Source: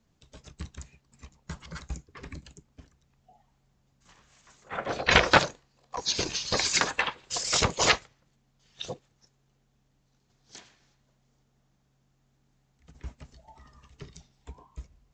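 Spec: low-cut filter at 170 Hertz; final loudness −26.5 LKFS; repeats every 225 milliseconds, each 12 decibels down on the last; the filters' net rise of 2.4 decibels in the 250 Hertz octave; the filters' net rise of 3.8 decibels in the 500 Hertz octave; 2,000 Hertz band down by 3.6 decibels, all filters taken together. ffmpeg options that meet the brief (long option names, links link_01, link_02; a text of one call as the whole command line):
ffmpeg -i in.wav -af "highpass=170,equalizer=frequency=250:width_type=o:gain=3.5,equalizer=frequency=500:width_type=o:gain=4,equalizer=frequency=2000:width_type=o:gain=-5,aecho=1:1:225|450|675:0.251|0.0628|0.0157" out.wav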